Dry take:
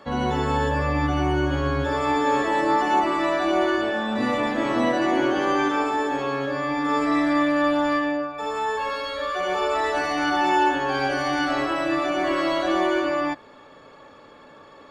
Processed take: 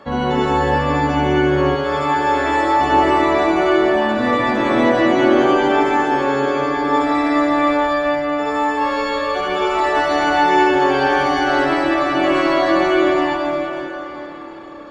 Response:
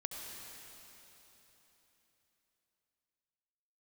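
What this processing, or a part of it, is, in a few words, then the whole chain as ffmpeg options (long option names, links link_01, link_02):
swimming-pool hall: -filter_complex "[1:a]atrim=start_sample=2205[link_01];[0:a][link_01]afir=irnorm=-1:irlink=0,highshelf=frequency=4200:gain=-7.5,asettb=1/sr,asplit=3[link_02][link_03][link_04];[link_02]atrim=end=1.754[link_05];[link_03]atrim=start=1.75:end=2.81,asetpts=PTS-STARTPTS,afade=type=in:duration=0.004:curve=qsin,afade=type=out:start_time=1.056:duration=0.004:curve=qsin,lowshelf=frequency=250:gain=-10[link_06];[link_04]atrim=start=2.806[link_07];[link_05][link_06]acrossfade=duration=0.004:curve1=hsin:curve2=qsin[link_08];[link_08][link_07]acrossfade=duration=0.004:curve1=qsin:curve2=hsin,volume=8dB"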